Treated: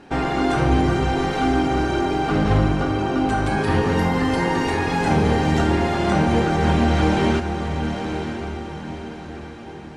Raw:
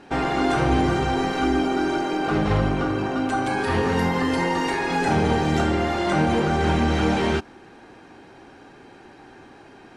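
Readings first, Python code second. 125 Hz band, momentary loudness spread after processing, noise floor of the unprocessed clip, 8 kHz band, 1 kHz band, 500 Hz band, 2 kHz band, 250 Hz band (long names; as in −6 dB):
+4.5 dB, 13 LU, −48 dBFS, +1.0 dB, +1.5 dB, +1.5 dB, +1.0 dB, +2.5 dB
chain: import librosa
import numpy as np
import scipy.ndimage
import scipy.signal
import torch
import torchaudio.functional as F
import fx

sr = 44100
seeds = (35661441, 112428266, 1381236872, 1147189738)

p1 = fx.low_shelf(x, sr, hz=200.0, db=5.0)
y = p1 + fx.echo_diffused(p1, sr, ms=965, feedback_pct=44, wet_db=-7, dry=0)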